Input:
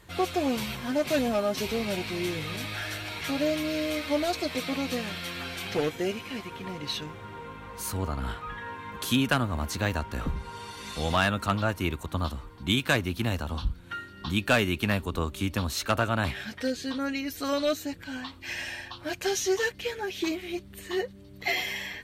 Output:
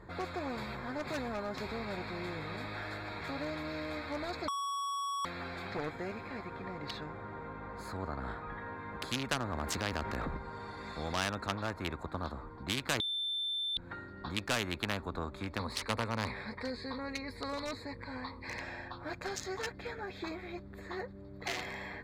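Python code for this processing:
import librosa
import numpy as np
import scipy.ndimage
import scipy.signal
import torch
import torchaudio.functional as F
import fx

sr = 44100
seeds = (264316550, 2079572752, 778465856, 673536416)

y = fx.env_flatten(x, sr, amount_pct=70, at=(9.4, 10.37))
y = fx.ripple_eq(y, sr, per_octave=0.93, db=13, at=(15.59, 18.61))
y = fx.edit(y, sr, fx.bleep(start_s=4.48, length_s=0.77, hz=1120.0, db=-13.5),
    fx.bleep(start_s=13.0, length_s=0.77, hz=3550.0, db=-11.5), tone=tone)
y = fx.wiener(y, sr, points=15)
y = fx.high_shelf(y, sr, hz=8500.0, db=-8.0)
y = fx.spectral_comp(y, sr, ratio=2.0)
y = y * 10.0 ** (-4.0 / 20.0)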